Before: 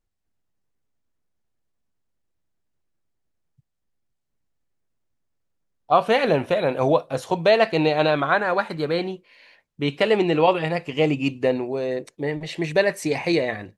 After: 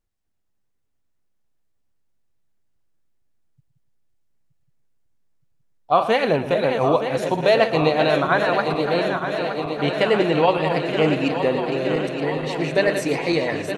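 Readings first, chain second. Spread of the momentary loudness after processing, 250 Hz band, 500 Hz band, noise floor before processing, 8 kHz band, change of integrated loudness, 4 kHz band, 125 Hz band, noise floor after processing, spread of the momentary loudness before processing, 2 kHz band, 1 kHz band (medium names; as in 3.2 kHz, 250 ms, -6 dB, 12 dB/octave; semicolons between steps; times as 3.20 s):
6 LU, +1.5 dB, +1.5 dB, -77 dBFS, no reading, +1.5 dB, +2.0 dB, +2.0 dB, -70 dBFS, 10 LU, +1.5 dB, +2.0 dB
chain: backward echo that repeats 460 ms, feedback 84%, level -8 dB; delay 116 ms -13.5 dB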